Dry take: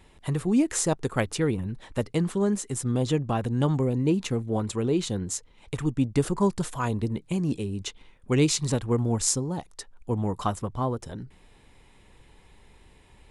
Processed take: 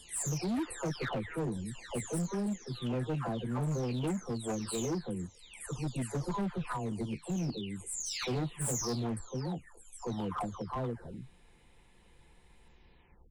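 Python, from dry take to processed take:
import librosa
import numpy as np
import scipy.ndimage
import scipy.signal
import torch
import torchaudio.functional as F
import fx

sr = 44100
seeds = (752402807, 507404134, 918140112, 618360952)

y = fx.spec_delay(x, sr, highs='early', ms=622)
y = np.clip(y, -10.0 ** (-25.0 / 20.0), 10.0 ** (-25.0 / 20.0))
y = y * 10.0 ** (-5.0 / 20.0)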